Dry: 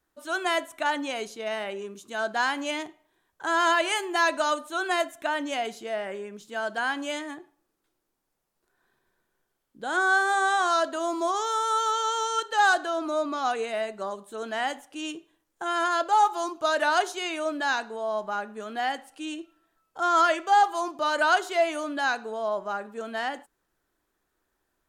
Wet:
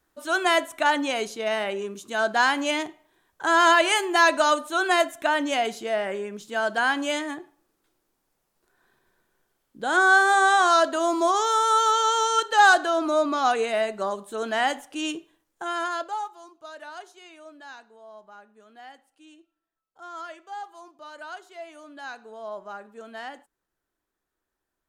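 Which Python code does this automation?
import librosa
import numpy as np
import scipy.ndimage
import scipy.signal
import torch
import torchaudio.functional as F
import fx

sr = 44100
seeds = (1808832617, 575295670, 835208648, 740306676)

y = fx.gain(x, sr, db=fx.line((15.16, 5.0), (16.03, -5.0), (16.37, -17.0), (21.57, -17.0), (22.53, -7.0)))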